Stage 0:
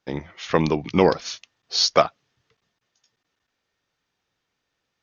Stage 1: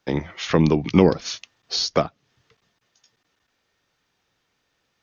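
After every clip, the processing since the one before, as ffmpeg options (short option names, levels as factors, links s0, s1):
-filter_complex "[0:a]acrossover=split=370[s0][s1];[s1]acompressor=threshold=0.0282:ratio=3[s2];[s0][s2]amix=inputs=2:normalize=0,volume=2"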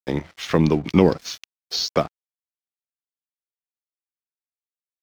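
-af "aeval=exprs='sgn(val(0))*max(abs(val(0))-0.00891,0)':c=same"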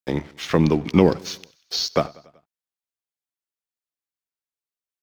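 -af "aecho=1:1:95|190|285|380:0.0708|0.0418|0.0246|0.0145"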